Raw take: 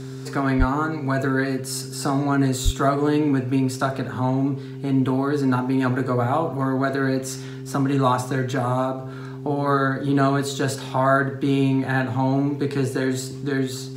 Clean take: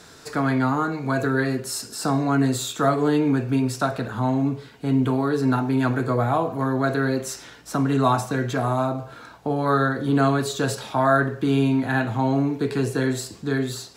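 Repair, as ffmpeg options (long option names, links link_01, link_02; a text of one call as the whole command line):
ffmpeg -i in.wav -filter_complex "[0:a]bandreject=frequency=131.8:width_type=h:width=4,bandreject=frequency=263.6:width_type=h:width=4,bandreject=frequency=395.4:width_type=h:width=4,asplit=3[link_01][link_02][link_03];[link_01]afade=type=out:start_time=0.58:duration=0.02[link_04];[link_02]highpass=frequency=140:width=0.5412,highpass=frequency=140:width=1.3066,afade=type=in:start_time=0.58:duration=0.02,afade=type=out:start_time=0.7:duration=0.02[link_05];[link_03]afade=type=in:start_time=0.7:duration=0.02[link_06];[link_04][link_05][link_06]amix=inputs=3:normalize=0,asplit=3[link_07][link_08][link_09];[link_07]afade=type=out:start_time=2.64:duration=0.02[link_10];[link_08]highpass=frequency=140:width=0.5412,highpass=frequency=140:width=1.3066,afade=type=in:start_time=2.64:duration=0.02,afade=type=out:start_time=2.76:duration=0.02[link_11];[link_09]afade=type=in:start_time=2.76:duration=0.02[link_12];[link_10][link_11][link_12]amix=inputs=3:normalize=0" out.wav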